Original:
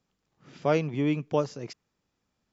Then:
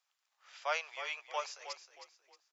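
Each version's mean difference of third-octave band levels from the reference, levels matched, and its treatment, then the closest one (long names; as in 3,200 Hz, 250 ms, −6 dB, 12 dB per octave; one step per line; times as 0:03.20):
15.0 dB: Bessel high-pass filter 1,200 Hz, order 8
echo with shifted repeats 314 ms, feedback 32%, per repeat −37 Hz, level −10.5 dB
level +1 dB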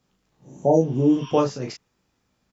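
5.5 dB: healed spectral selection 0:00.40–0:01.30, 930–5,800 Hz both
ambience of single reflections 16 ms −5 dB, 37 ms −4 dB
level +5.5 dB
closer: second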